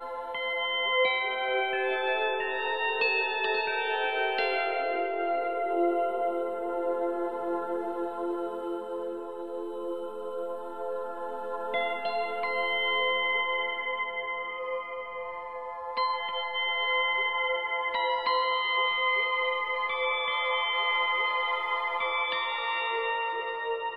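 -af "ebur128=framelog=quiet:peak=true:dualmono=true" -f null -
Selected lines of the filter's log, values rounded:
Integrated loudness:
  I:         -25.7 LUFS
  Threshold: -35.7 LUFS
Loudness range:
  LRA:         7.4 LU
  Threshold: -45.7 LUFS
  LRA low:   -30.9 LUFS
  LRA high:  -23.5 LUFS
True peak:
  Peak:      -14.6 dBFS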